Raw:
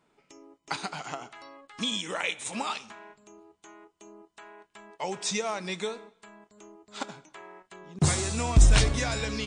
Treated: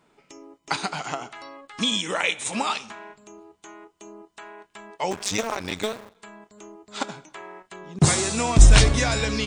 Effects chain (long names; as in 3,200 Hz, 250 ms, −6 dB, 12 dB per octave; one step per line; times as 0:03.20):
0:05.11–0:06.16: sub-harmonics by changed cycles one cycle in 2, muted
0:08.05–0:08.59: high-pass filter 150 Hz 12 dB per octave
level +6.5 dB